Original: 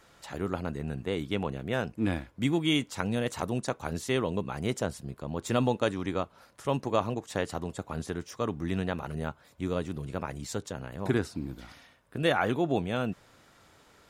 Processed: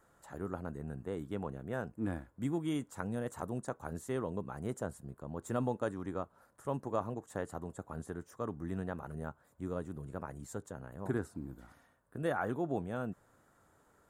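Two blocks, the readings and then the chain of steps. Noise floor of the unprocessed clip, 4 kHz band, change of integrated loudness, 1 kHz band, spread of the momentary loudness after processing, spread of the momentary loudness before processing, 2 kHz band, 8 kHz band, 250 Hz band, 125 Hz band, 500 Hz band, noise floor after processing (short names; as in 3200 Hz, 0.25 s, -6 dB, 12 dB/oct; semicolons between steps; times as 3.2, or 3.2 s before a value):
-60 dBFS, -20.5 dB, -8.0 dB, -7.5 dB, 10 LU, 10 LU, -10.5 dB, -10.0 dB, -7.5 dB, -7.5 dB, -7.5 dB, -69 dBFS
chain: band shelf 3500 Hz -13 dB; gain -7.5 dB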